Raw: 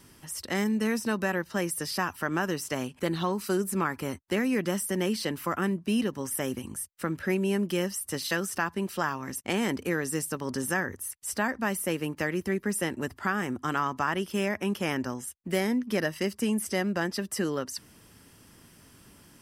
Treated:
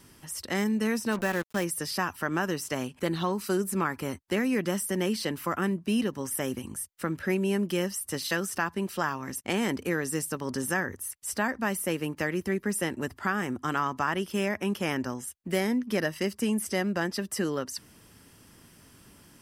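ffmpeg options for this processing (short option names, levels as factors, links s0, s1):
-filter_complex "[0:a]asplit=3[s0][s1][s2];[s0]afade=t=out:st=1.11:d=0.02[s3];[s1]acrusher=bits=5:mix=0:aa=0.5,afade=t=in:st=1.11:d=0.02,afade=t=out:st=1.63:d=0.02[s4];[s2]afade=t=in:st=1.63:d=0.02[s5];[s3][s4][s5]amix=inputs=3:normalize=0"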